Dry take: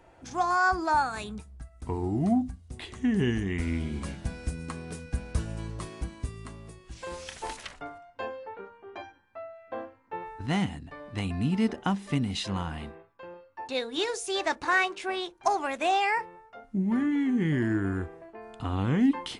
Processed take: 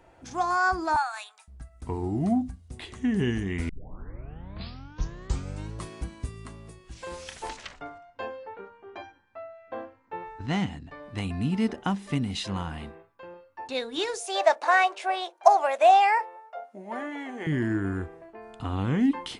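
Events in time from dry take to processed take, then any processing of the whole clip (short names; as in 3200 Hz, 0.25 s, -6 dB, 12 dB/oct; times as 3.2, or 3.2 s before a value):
0.96–1.48 elliptic high-pass 720 Hz, stop band 80 dB
3.69 tape start 2.06 s
7.49–11.03 LPF 7600 Hz 24 dB/oct
14.2–17.47 resonant high-pass 630 Hz, resonance Q 4.3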